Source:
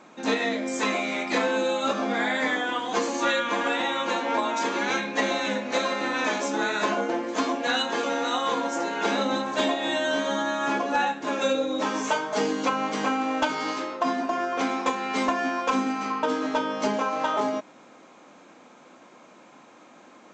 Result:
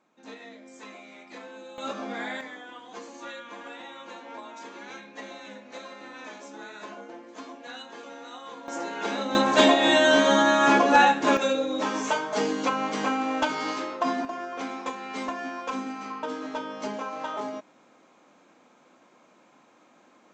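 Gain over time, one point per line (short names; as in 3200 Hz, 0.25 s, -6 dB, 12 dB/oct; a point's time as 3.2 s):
-19 dB
from 1.78 s -8 dB
from 2.41 s -16 dB
from 8.68 s -5 dB
from 9.35 s +7 dB
from 11.37 s -1 dB
from 14.25 s -7.5 dB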